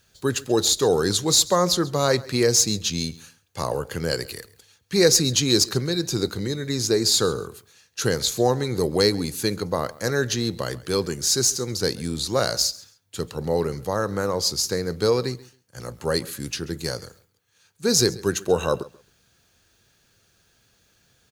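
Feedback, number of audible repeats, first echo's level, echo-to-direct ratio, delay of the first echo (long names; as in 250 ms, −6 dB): 20%, 2, −21.0 dB, −21.0 dB, 135 ms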